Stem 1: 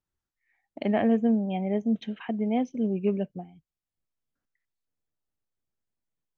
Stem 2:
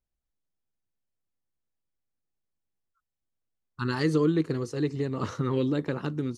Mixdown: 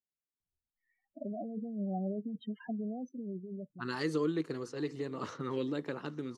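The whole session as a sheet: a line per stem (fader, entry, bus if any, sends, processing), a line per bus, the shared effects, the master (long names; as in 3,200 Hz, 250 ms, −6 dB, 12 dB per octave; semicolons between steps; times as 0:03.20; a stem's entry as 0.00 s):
−8.0 dB, 0.40 s, no send, no echo send, compressor whose output falls as the input rises −28 dBFS, ratio −1; spectral peaks only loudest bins 8; automatic ducking −8 dB, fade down 1.15 s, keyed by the second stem
−5.5 dB, 0.00 s, no send, echo send −22 dB, low-pass that shuts in the quiet parts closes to 380 Hz, open at −26 dBFS; high-pass filter 130 Hz; low-shelf EQ 190 Hz −9 dB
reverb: not used
echo: single-tap delay 847 ms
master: no processing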